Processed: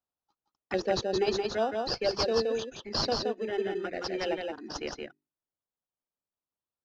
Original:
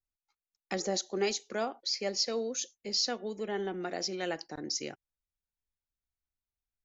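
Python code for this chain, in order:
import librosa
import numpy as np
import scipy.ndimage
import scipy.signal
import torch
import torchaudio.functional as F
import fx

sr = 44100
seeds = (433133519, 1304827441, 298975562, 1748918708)

p1 = scipy.signal.sosfilt(scipy.signal.butter(2, 280.0, 'highpass', fs=sr, output='sos'), x)
p2 = fx.hum_notches(p1, sr, base_hz=50, count=8)
p3 = fx.dereverb_blind(p2, sr, rt60_s=1.9)
p4 = fx.env_phaser(p3, sr, low_hz=360.0, high_hz=1800.0, full_db=-30.5)
p5 = fx.sample_hold(p4, sr, seeds[0], rate_hz=2200.0, jitter_pct=0)
p6 = p4 + (p5 * librosa.db_to_amplitude(-7.5))
p7 = fx.air_absorb(p6, sr, metres=170.0)
p8 = p7 + fx.echo_single(p7, sr, ms=171, db=-4.0, dry=0)
y = p8 * librosa.db_to_amplitude(6.5)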